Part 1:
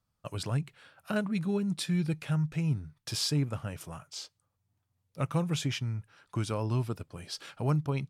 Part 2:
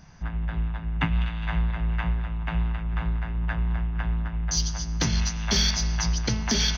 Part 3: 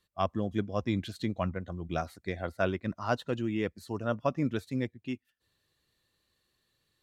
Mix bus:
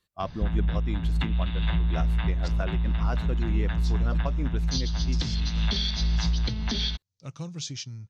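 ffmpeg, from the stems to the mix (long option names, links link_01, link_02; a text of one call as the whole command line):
ffmpeg -i stem1.wav -i stem2.wav -i stem3.wav -filter_complex "[0:a]lowpass=frequency=6300:width_type=q:width=4.8,equalizer=frequency=4400:width=1.1:gain=14.5,adelay=2050,volume=-15dB[link_01];[1:a]lowpass=frequency=3800:width_type=q:width=6.1,adelay=200,volume=1dB[link_02];[2:a]bandreject=frequency=590:width=19,volume=-0.5dB[link_03];[link_01][link_02]amix=inputs=2:normalize=0,lowshelf=frequency=460:gain=9.5,acompressor=threshold=-20dB:ratio=6,volume=0dB[link_04];[link_03][link_04]amix=inputs=2:normalize=0,alimiter=limit=-16.5dB:level=0:latency=1:release=475" out.wav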